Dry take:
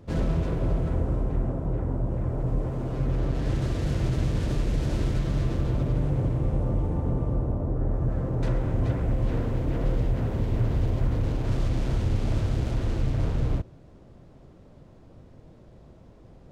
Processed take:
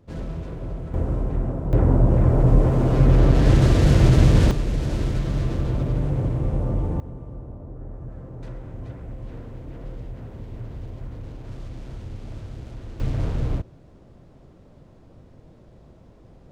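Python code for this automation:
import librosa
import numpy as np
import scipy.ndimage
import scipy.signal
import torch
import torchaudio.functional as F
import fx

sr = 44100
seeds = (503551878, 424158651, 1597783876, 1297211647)

y = fx.gain(x, sr, db=fx.steps((0.0, -6.0), (0.94, 2.0), (1.73, 11.0), (4.51, 2.0), (7.0, -10.5), (13.0, 1.0)))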